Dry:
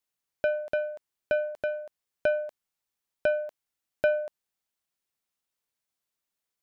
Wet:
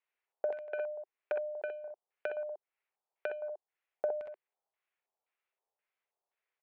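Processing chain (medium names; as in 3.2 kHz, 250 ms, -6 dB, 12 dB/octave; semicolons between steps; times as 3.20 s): elliptic high-pass 380 Hz; tilt EQ -3 dB/octave; compression 6:1, threshold -28 dBFS, peak gain reduction 9.5 dB; LFO low-pass square 1.9 Hz 800–2300 Hz; early reflections 47 ms -14.5 dB, 62 ms -4 dB; tape noise reduction on one side only encoder only; trim -7.5 dB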